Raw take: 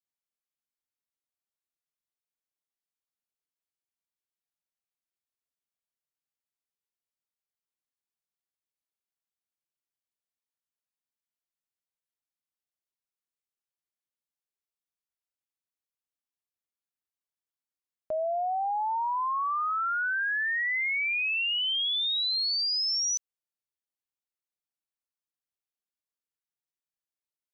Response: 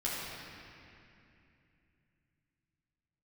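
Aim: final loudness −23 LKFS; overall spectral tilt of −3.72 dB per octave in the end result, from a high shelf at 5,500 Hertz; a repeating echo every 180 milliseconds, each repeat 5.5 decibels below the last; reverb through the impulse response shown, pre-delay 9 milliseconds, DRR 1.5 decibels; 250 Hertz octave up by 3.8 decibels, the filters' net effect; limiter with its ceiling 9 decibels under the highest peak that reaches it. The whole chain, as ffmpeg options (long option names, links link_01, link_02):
-filter_complex "[0:a]equalizer=frequency=250:width_type=o:gain=5,highshelf=frequency=5500:gain=-7,alimiter=level_in=10dB:limit=-24dB:level=0:latency=1,volume=-10dB,aecho=1:1:180|360|540|720|900|1080|1260:0.531|0.281|0.149|0.079|0.0419|0.0222|0.0118,asplit=2[link_01][link_02];[1:a]atrim=start_sample=2205,adelay=9[link_03];[link_02][link_03]afir=irnorm=-1:irlink=0,volume=-7.5dB[link_04];[link_01][link_04]amix=inputs=2:normalize=0,volume=9dB"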